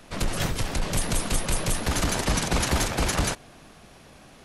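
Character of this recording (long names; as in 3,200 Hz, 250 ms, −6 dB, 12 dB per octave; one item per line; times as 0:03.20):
background noise floor −50 dBFS
spectral slope −3.5 dB per octave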